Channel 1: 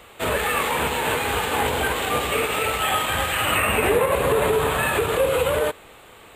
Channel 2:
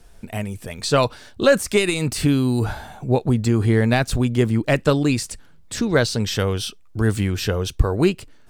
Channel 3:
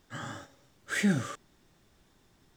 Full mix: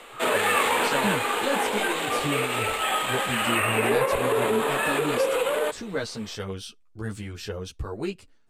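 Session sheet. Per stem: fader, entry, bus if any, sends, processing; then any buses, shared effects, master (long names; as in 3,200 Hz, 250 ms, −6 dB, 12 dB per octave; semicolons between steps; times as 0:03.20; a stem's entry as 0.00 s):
+2.0 dB, 0.00 s, no send, high-pass filter 210 Hz 24 dB per octave; automatic ducking −9 dB, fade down 1.30 s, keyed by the second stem
−12.0 dB, 0.00 s, no send, string-ensemble chorus
−4.0 dB, 0.00 s, no send, spectral dynamics exaggerated over time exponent 1.5; low-pass with resonance 1,200 Hz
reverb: not used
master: low-pass filter 12,000 Hz 12 dB per octave; low-shelf EQ 180 Hz −4.5 dB; automatic gain control gain up to 4 dB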